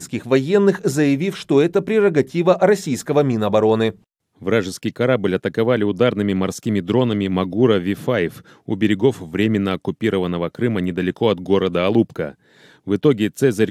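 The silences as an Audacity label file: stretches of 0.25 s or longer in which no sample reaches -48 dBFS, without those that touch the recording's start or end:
4.030000	4.370000	silence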